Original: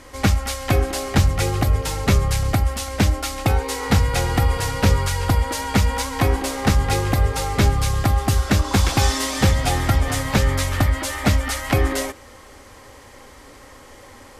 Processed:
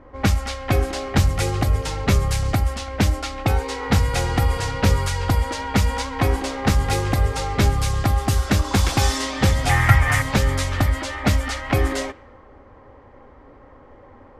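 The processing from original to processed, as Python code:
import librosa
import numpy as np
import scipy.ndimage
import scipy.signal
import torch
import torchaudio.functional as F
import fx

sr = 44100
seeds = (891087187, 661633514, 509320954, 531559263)

y = fx.graphic_eq(x, sr, hz=(125, 250, 500, 1000, 2000, 4000), db=(10, -8, -3, 5, 12, -5), at=(9.69, 10.22))
y = fx.env_lowpass(y, sr, base_hz=1000.0, full_db=-14.0)
y = y * 10.0 ** (-1.0 / 20.0)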